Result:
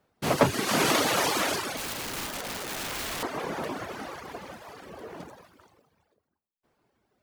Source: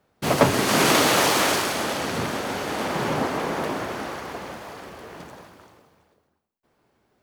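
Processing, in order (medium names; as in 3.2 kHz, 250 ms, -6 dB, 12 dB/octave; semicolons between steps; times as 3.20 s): reverb removal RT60 0.93 s; 1.77–3.23 s: integer overflow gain 25.5 dB; 4.89–5.33 s: peaking EQ 400 Hz +6.5 dB 2.5 oct; trim -3.5 dB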